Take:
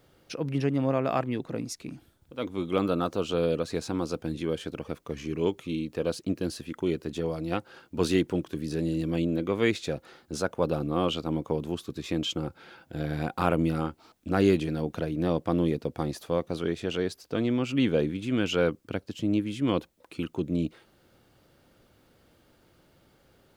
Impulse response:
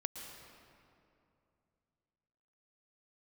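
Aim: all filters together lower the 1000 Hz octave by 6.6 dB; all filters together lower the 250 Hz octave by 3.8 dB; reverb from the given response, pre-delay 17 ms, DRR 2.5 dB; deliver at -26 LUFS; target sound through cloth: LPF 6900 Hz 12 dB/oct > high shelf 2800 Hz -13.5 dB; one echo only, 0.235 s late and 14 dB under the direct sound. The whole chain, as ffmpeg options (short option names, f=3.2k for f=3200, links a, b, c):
-filter_complex "[0:a]equalizer=f=250:t=o:g=-4.5,equalizer=f=1k:t=o:g=-7,aecho=1:1:235:0.2,asplit=2[a][b];[1:a]atrim=start_sample=2205,adelay=17[c];[b][c]afir=irnorm=-1:irlink=0,volume=-2dB[d];[a][d]amix=inputs=2:normalize=0,lowpass=6.9k,highshelf=f=2.8k:g=-13.5,volume=5dB"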